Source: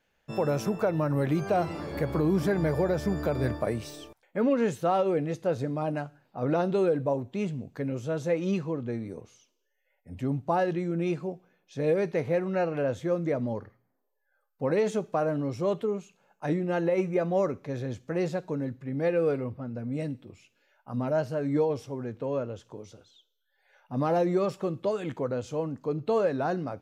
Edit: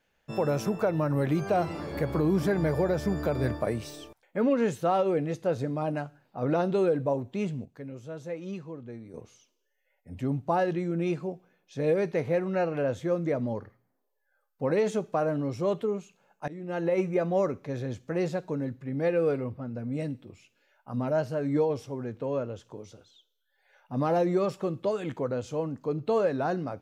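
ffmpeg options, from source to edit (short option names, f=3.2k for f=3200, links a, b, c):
-filter_complex "[0:a]asplit=4[a][b][c][d];[a]atrim=end=7.652[e];[b]atrim=start=7.648:end=9.142,asetpts=PTS-STARTPTS,volume=-9dB[f];[c]atrim=start=9.138:end=16.48,asetpts=PTS-STARTPTS,afade=t=out:st=7.338:d=0.004:c=hsin:silence=0.0707946[g];[d]atrim=start=16.48,asetpts=PTS-STARTPTS,afade=t=in:d=0.45:silence=0.0707946[h];[e][f]acrossfade=d=0.004:c1=hsin:c2=hsin[i];[g][h]concat=n=2:v=0:a=1[j];[i][j]acrossfade=d=0.004:c1=hsin:c2=hsin"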